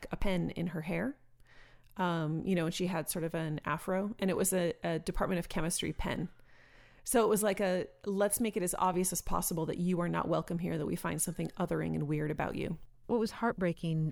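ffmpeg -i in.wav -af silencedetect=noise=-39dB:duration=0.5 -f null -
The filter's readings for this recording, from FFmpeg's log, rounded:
silence_start: 1.11
silence_end: 1.97 | silence_duration: 0.86
silence_start: 6.26
silence_end: 7.07 | silence_duration: 0.81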